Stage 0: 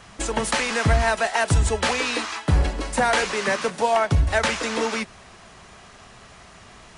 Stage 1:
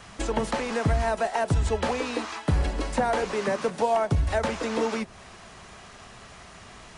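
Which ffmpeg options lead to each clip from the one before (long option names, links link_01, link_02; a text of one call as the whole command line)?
ffmpeg -i in.wav -filter_complex "[0:a]acrossover=split=950|5900[link_01][link_02][link_03];[link_01]acompressor=threshold=-20dB:ratio=4[link_04];[link_02]acompressor=threshold=-37dB:ratio=4[link_05];[link_03]acompressor=threshold=-50dB:ratio=4[link_06];[link_04][link_05][link_06]amix=inputs=3:normalize=0" out.wav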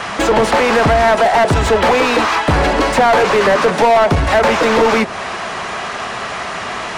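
ffmpeg -i in.wav -filter_complex "[0:a]asplit=2[link_01][link_02];[link_02]highpass=frequency=720:poles=1,volume=27dB,asoftclip=type=tanh:threshold=-11.5dB[link_03];[link_01][link_03]amix=inputs=2:normalize=0,lowpass=frequency=1700:poles=1,volume=-6dB,volume=8dB" out.wav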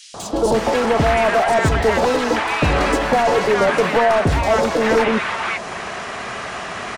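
ffmpeg -i in.wav -filter_complex "[0:a]acrossover=split=1000|3900[link_01][link_02][link_03];[link_01]adelay=140[link_04];[link_02]adelay=540[link_05];[link_04][link_05][link_03]amix=inputs=3:normalize=0,volume=-3dB" out.wav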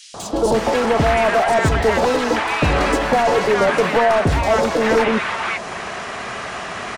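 ffmpeg -i in.wav -af anull out.wav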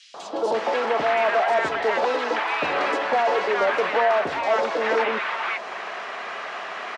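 ffmpeg -i in.wav -af "highpass=460,lowpass=3900,volume=-3.5dB" out.wav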